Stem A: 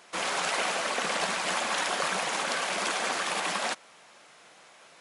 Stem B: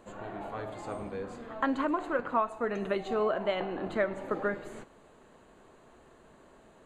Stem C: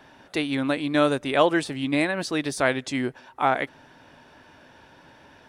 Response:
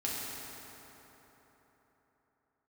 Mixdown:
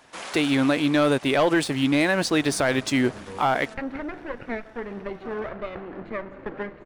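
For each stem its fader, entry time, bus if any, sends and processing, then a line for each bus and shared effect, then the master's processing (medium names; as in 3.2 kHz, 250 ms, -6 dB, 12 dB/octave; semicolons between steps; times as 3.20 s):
-3.0 dB, 0.00 s, no send, auto duck -14 dB, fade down 1.15 s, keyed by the third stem
-0.5 dB, 2.15 s, no send, comb filter that takes the minimum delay 0.45 ms; low-pass 2.2 kHz 12 dB/octave
-2.0 dB, 0.00 s, no send, waveshaping leveller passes 2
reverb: none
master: peak limiter -12.5 dBFS, peak gain reduction 6 dB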